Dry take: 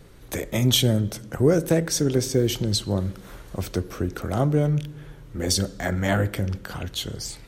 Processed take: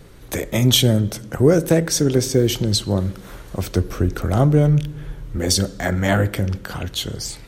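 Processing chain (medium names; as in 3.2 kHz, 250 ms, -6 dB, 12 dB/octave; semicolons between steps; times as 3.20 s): 3.76–5.39 s: bass shelf 78 Hz +11 dB; trim +4.5 dB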